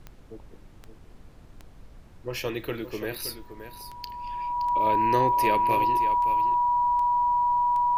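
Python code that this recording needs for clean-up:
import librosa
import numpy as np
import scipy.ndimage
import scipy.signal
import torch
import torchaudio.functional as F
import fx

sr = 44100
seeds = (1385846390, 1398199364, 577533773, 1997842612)

y = fx.fix_declick_ar(x, sr, threshold=10.0)
y = fx.notch(y, sr, hz=970.0, q=30.0)
y = fx.noise_reduce(y, sr, print_start_s=0.99, print_end_s=1.49, reduce_db=23.0)
y = fx.fix_echo_inverse(y, sr, delay_ms=570, level_db=-11.0)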